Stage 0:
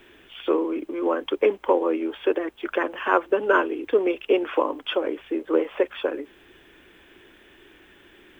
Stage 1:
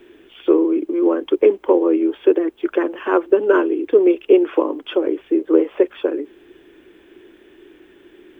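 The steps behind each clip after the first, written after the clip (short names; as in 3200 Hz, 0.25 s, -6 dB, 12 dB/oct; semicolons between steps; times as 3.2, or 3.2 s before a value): bell 350 Hz +13 dB 1 oct; gain -2.5 dB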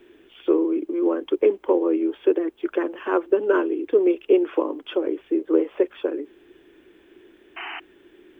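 painted sound noise, 7.56–7.8, 660–3100 Hz -29 dBFS; gain -5 dB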